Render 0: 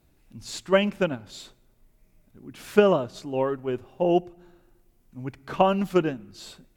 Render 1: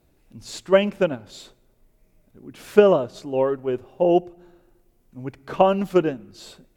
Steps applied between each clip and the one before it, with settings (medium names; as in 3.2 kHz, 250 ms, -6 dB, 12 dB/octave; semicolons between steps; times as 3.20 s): peaking EQ 490 Hz +5.5 dB 1.2 oct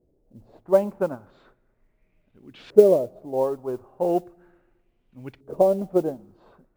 LFO low-pass saw up 0.37 Hz 440–3900 Hz; modulation noise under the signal 31 dB; trim -6 dB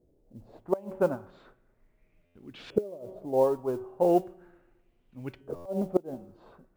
de-hum 188.8 Hz, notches 18; inverted gate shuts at -11 dBFS, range -24 dB; buffer glitch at 2.25/5.55 s, samples 512, times 8